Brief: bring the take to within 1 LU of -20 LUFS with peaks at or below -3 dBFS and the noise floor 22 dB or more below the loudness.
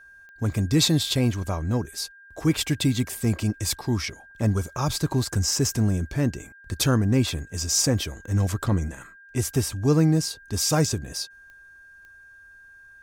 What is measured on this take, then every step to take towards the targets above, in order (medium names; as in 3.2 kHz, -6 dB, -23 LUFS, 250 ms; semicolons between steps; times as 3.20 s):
clicks found 4; steady tone 1.6 kHz; tone level -47 dBFS; loudness -24.5 LUFS; peak level -9.0 dBFS; loudness target -20.0 LUFS
-> de-click; band-stop 1.6 kHz, Q 30; trim +4.5 dB